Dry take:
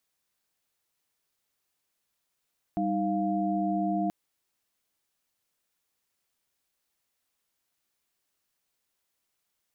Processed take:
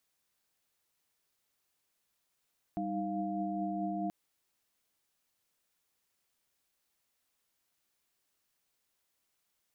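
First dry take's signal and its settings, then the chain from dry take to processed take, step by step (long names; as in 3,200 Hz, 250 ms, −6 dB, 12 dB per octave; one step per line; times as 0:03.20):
held notes G3/D#4/F5 sine, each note −29.5 dBFS 1.33 s
brickwall limiter −28.5 dBFS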